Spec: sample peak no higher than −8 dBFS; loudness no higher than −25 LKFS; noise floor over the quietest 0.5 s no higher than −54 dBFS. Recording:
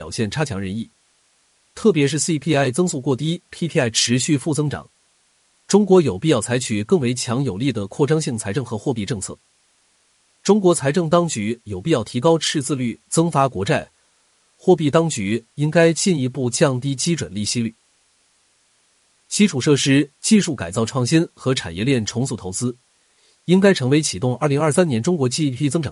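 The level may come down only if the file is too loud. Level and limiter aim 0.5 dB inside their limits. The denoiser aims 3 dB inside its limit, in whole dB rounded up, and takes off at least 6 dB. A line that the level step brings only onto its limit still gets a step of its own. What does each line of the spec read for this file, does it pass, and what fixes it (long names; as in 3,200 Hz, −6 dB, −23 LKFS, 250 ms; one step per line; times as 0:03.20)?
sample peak −2.0 dBFS: out of spec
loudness −19.5 LKFS: out of spec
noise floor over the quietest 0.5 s −61 dBFS: in spec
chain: level −6 dB
brickwall limiter −8.5 dBFS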